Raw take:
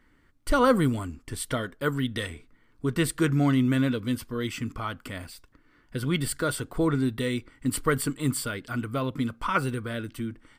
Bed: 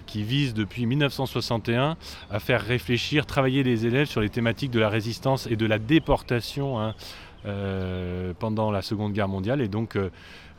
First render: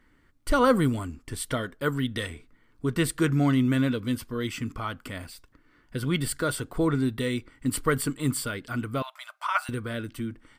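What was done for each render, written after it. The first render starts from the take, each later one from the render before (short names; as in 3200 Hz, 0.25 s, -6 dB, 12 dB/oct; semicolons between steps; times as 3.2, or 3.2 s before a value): 9.02–9.69 brick-wall FIR high-pass 580 Hz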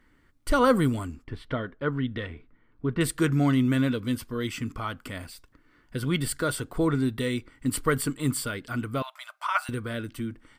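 1.24–3.01 air absorption 340 m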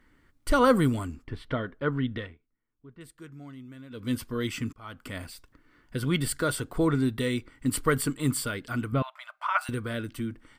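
2.14–4.14 dip -22 dB, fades 0.24 s; 4.73–5.16 fade in; 8.92–9.61 tone controls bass +7 dB, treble -13 dB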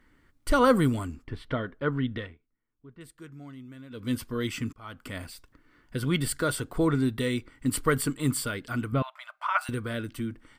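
nothing audible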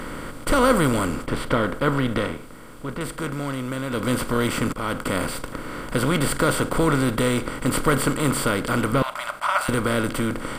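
per-bin compression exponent 0.4; attack slew limiter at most 510 dB/s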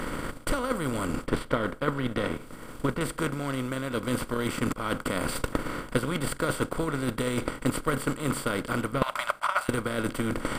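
reverse; compressor 10:1, threshold -27 dBFS, peak gain reduction 14.5 dB; reverse; transient shaper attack +10 dB, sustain -6 dB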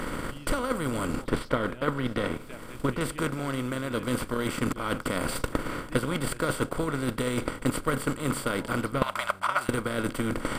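add bed -23 dB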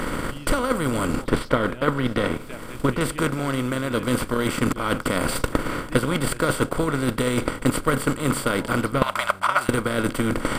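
gain +6 dB; limiter -1 dBFS, peak gain reduction 1 dB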